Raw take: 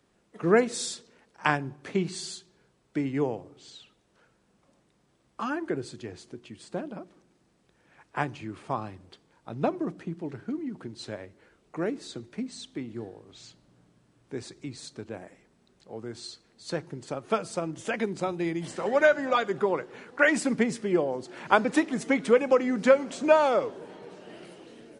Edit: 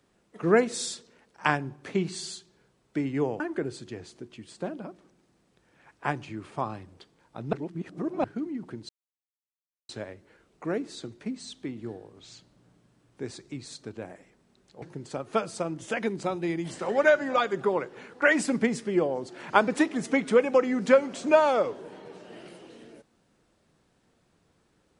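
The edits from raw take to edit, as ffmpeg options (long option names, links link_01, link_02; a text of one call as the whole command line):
ffmpeg -i in.wav -filter_complex "[0:a]asplit=6[link_01][link_02][link_03][link_04][link_05][link_06];[link_01]atrim=end=3.402[link_07];[link_02]atrim=start=5.518:end=9.652[link_08];[link_03]atrim=start=9.648:end=10.362,asetpts=PTS-STARTPTS,areverse[link_09];[link_04]atrim=start=10.358:end=11.01,asetpts=PTS-STARTPTS,afade=type=out:start_time=0.648:duration=0.004:curve=hsin,apad=pad_dur=1[link_10];[link_05]atrim=start=11.01:end=15.942,asetpts=PTS-STARTPTS,afade=type=in:duration=0.004:curve=hsin[link_11];[link_06]atrim=start=16.788[link_12];[link_07][link_08]acrossfade=duration=0.004:curve1=hsin:curve2=hsin[link_13];[link_13][link_09]acrossfade=duration=0.004:curve1=hsin:curve2=hsin[link_14];[link_10][link_11]concat=n=2:v=0:a=1[link_15];[link_14][link_15]acrossfade=duration=0.004:curve1=hsin:curve2=hsin[link_16];[link_16][link_12]acrossfade=duration=0.004:curve1=hsin:curve2=hsin" out.wav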